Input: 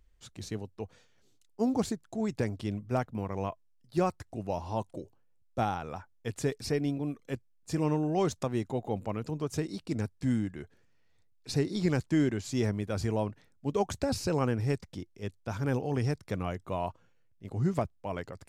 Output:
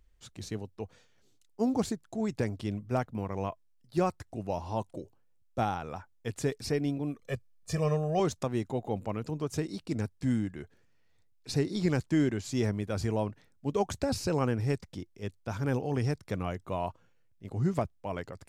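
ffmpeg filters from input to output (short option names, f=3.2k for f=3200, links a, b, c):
-filter_complex "[0:a]asettb=1/sr,asplit=3[a][b][c];[a]atrim=end=7.224[d];[b]atrim=start=7.22:end=8.2,asetpts=PTS-STARTPTS,afade=t=in:d=0.004:c=qsin,afade=t=out:st=0.976:d=0.004:c=qsin,aecho=1:1:1.7:0.85,atrim=end_sample=43218[e];[c]atrim=start=8.196[f];[d][e]acrossfade=d=0.004:c1=hsin:c2=qsin[g];[g][f]acrossfade=d=0.004:c1=qsin:c2=hsin"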